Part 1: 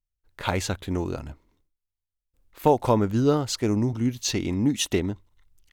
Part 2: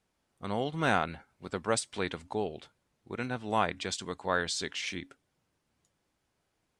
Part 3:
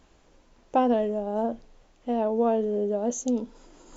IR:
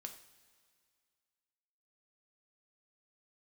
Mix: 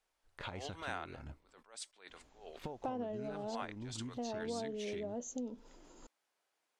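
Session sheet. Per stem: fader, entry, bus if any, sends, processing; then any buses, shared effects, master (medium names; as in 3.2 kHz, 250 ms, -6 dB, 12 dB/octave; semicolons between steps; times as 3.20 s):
-9.0 dB, 0.00 s, no send, low-pass 5.7 kHz 12 dB/octave; compression, threshold -30 dBFS, peak gain reduction 15.5 dB
-3.0 dB, 0.00 s, no send, high-pass 550 Hz 12 dB/octave; attacks held to a fixed rise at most 160 dB/s
-7.0 dB, 2.10 s, no send, none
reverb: none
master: compression 3:1, threshold -40 dBFS, peak gain reduction 12 dB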